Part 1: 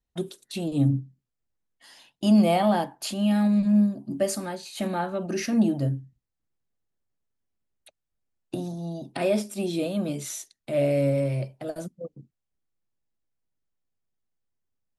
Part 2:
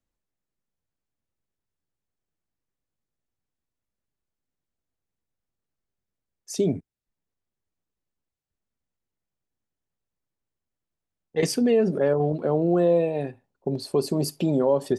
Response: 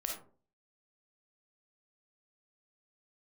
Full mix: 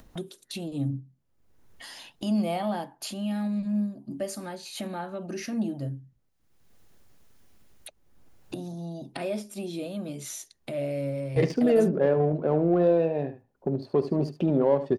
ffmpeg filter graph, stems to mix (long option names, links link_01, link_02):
-filter_complex "[0:a]volume=1.5dB[link_01];[1:a]adynamicsmooth=sensitivity=1.5:basefreq=1700,volume=-1dB,asplit=3[link_02][link_03][link_04];[link_02]atrim=end=6.29,asetpts=PTS-STARTPTS,afade=type=out:start_time=6.286:duration=0.004:curve=hsin[link_05];[link_03]atrim=start=6.29:end=7.91,asetpts=PTS-STARTPTS,volume=0[link_06];[link_04]atrim=start=7.91,asetpts=PTS-STARTPTS,afade=type=in:duration=0.004:curve=hsin[link_07];[link_05][link_06][link_07]concat=n=3:v=0:a=1,asplit=3[link_08][link_09][link_10];[link_09]volume=-12.5dB[link_11];[link_10]apad=whole_len=660782[link_12];[link_01][link_12]sidechaingate=range=-9dB:threshold=-47dB:ratio=16:detection=peak[link_13];[link_11]aecho=0:1:73:1[link_14];[link_13][link_08][link_14]amix=inputs=3:normalize=0,bandreject=frequency=7900:width=13,acompressor=mode=upward:threshold=-30dB:ratio=2.5"